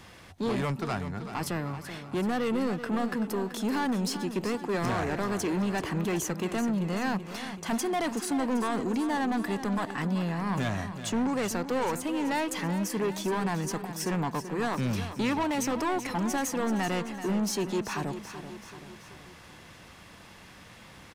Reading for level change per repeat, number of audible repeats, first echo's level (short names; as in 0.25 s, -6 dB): -5.0 dB, 4, -11.0 dB